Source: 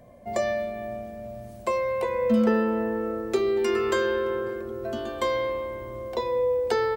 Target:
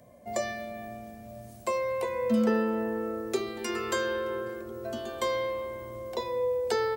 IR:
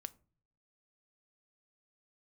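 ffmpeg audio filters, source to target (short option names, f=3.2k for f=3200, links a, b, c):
-filter_complex "[0:a]highpass=64,bandreject=f=98.72:t=h:w=4,bandreject=f=197.44:t=h:w=4,bandreject=f=296.16:t=h:w=4,bandreject=f=394.88:t=h:w=4,bandreject=f=493.6:t=h:w=4,bandreject=f=592.32:t=h:w=4,bandreject=f=691.04:t=h:w=4,bandreject=f=789.76:t=h:w=4,bandreject=f=888.48:t=h:w=4,bandreject=f=987.2:t=h:w=4,bandreject=f=1.08592k:t=h:w=4,bandreject=f=1.18464k:t=h:w=4,bandreject=f=1.28336k:t=h:w=4,bandreject=f=1.38208k:t=h:w=4,bandreject=f=1.4808k:t=h:w=4,acrossover=split=380|4900[a][b][c];[c]acontrast=85[d];[a][b][d]amix=inputs=3:normalize=0,volume=-3.5dB"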